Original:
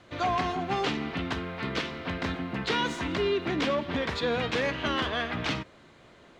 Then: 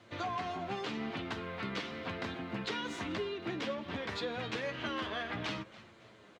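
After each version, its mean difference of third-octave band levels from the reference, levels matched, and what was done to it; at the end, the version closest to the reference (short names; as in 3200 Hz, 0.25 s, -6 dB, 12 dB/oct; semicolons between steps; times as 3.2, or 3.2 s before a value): 2.5 dB: frequency-shifting echo 0.279 s, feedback 36%, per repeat -100 Hz, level -21.5 dB; compressor, threshold -30 dBFS, peak gain reduction 7 dB; flange 0.85 Hz, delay 8.7 ms, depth 1.4 ms, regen +36%; HPF 86 Hz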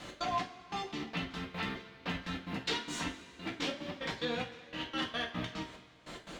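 7.0 dB: compressor 4:1, threshold -45 dBFS, peak gain reduction 17.5 dB; high shelf 2900 Hz +9 dB; step gate "x.xx...x.x.x." 146 bpm -24 dB; two-slope reverb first 0.26 s, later 2 s, from -19 dB, DRR -2 dB; gain +4 dB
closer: first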